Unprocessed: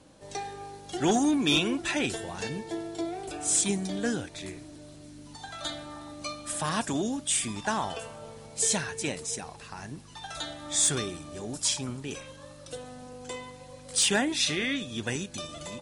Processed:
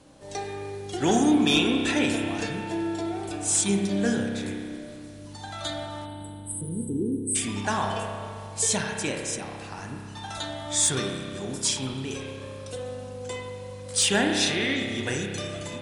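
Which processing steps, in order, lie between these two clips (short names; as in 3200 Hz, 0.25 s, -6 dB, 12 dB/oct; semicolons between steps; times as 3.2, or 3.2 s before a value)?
spectral delete 6.06–7.36, 510–7800 Hz; spring tank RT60 2.2 s, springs 30 ms, chirp 60 ms, DRR 2 dB; gain +1.5 dB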